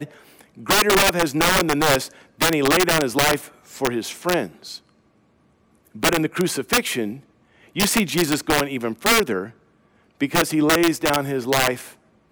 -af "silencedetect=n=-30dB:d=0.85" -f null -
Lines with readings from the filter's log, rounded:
silence_start: 4.76
silence_end: 5.96 | silence_duration: 1.20